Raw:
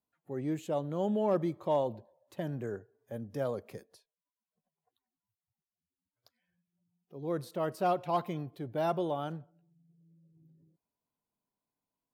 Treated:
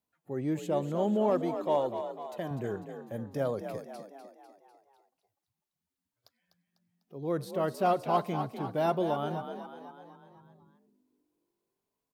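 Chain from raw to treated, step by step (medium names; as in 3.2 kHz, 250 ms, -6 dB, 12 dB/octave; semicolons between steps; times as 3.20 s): 1.30–2.51 s: bass shelf 210 Hz -10.5 dB; frequency-shifting echo 249 ms, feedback 53%, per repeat +46 Hz, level -9 dB; trim +2.5 dB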